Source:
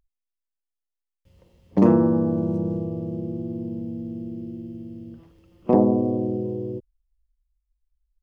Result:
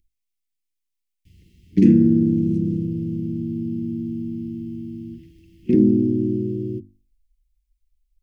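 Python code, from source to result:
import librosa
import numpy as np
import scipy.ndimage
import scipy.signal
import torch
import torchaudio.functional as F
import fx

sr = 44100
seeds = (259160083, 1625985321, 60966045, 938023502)

y = scipy.signal.sosfilt(scipy.signal.ellip(3, 1.0, 40, [340.0, 2100.0], 'bandstop', fs=sr, output='sos'), x)
y = fx.hum_notches(y, sr, base_hz=50, count=7)
y = y * 10.0 ** (6.0 / 20.0)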